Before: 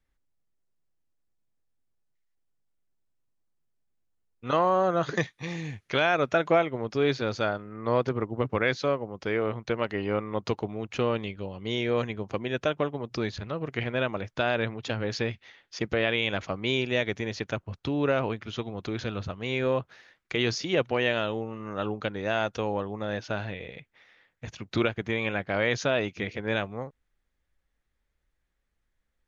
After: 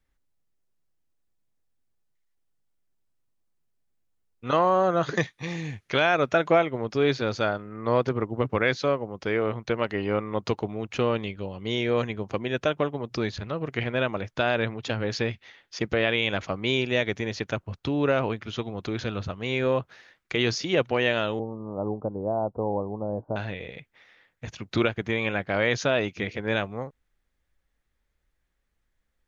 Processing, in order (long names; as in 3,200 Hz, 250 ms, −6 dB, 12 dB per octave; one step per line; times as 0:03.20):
0:21.39–0:23.36: Butterworth low-pass 1,000 Hz 48 dB per octave
level +2 dB